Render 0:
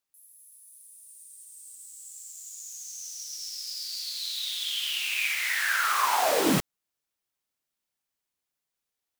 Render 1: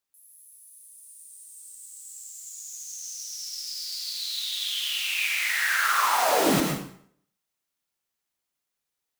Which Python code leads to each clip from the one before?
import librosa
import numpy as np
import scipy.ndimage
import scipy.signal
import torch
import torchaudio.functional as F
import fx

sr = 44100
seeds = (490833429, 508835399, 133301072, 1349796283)

y = fx.rev_plate(x, sr, seeds[0], rt60_s=0.61, hf_ratio=0.85, predelay_ms=90, drr_db=2.0)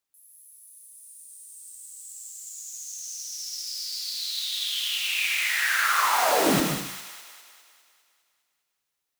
y = fx.echo_wet_highpass(x, sr, ms=202, feedback_pct=56, hz=1800.0, wet_db=-7.0)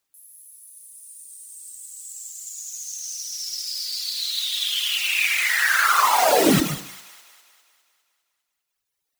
y = fx.dereverb_blind(x, sr, rt60_s=1.7)
y = y * 10.0 ** (7.0 / 20.0)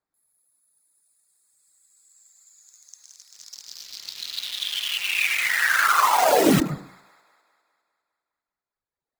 y = fx.wiener(x, sr, points=15)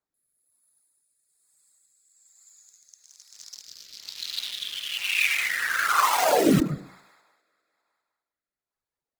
y = fx.rotary(x, sr, hz=1.1)